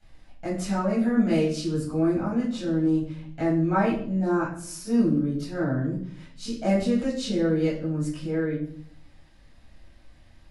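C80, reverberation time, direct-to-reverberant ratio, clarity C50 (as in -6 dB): 9.0 dB, 0.60 s, -10.5 dB, 4.0 dB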